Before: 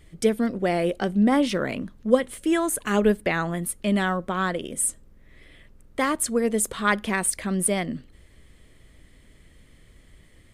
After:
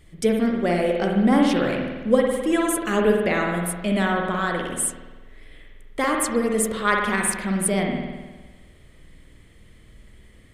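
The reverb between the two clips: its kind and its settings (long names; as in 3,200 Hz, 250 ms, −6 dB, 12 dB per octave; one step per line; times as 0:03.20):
spring reverb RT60 1.3 s, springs 51 ms, chirp 40 ms, DRR 0.5 dB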